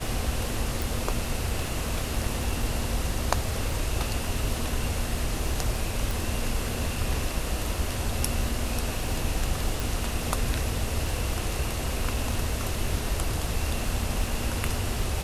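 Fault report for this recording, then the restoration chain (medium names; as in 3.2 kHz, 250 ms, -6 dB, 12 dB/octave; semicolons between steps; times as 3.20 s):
crackle 28 per s -32 dBFS
0.82 s: pop
6.11 s: pop
9.80 s: pop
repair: de-click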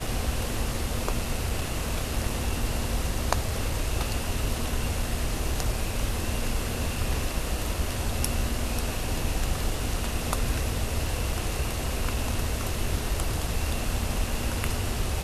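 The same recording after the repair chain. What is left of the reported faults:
0.82 s: pop
6.11 s: pop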